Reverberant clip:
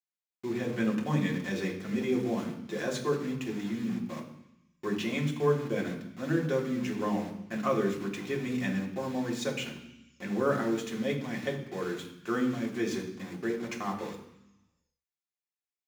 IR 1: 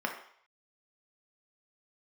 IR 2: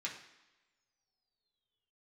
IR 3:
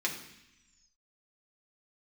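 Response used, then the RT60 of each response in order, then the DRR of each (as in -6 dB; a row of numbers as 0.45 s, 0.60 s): 3; 0.60 s, no single decay rate, 0.85 s; 1.0 dB, -4.0 dB, -2.0 dB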